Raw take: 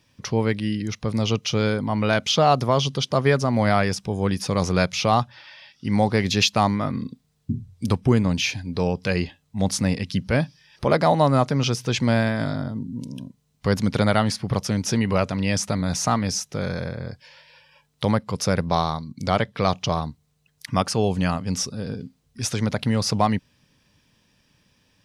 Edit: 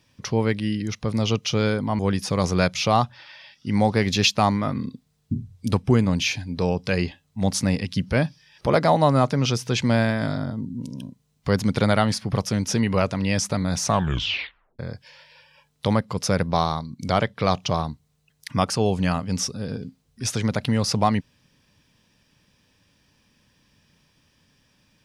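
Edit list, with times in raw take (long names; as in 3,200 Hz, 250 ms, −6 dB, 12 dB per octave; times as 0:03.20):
0:01.99–0:04.17: remove
0:16.01: tape stop 0.96 s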